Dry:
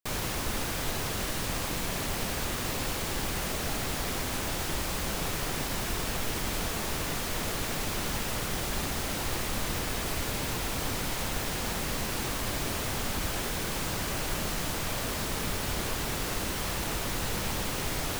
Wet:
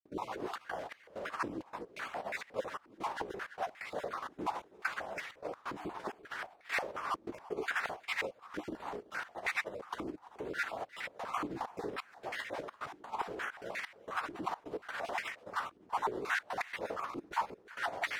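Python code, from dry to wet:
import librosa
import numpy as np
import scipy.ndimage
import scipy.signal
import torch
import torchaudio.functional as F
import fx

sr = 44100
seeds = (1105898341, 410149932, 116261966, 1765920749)

p1 = fx.spec_dropout(x, sr, seeds[0], share_pct=21)
p2 = fx.chorus_voices(p1, sr, voices=2, hz=0.78, base_ms=13, depth_ms=3.9, mix_pct=30)
p3 = fx.over_compress(p2, sr, threshold_db=-38.0, ratio=-0.5)
p4 = fx.step_gate(p3, sr, bpm=130, pattern='.xxxx.xx..xxxx.x', floor_db=-24.0, edge_ms=4.5)
p5 = p4 + fx.echo_feedback(p4, sr, ms=338, feedback_pct=50, wet_db=-21.0, dry=0)
p6 = fx.filter_held_bandpass(p5, sr, hz=5.6, low_hz=320.0, high_hz=2000.0)
y = p6 * librosa.db_to_amplitude(13.0)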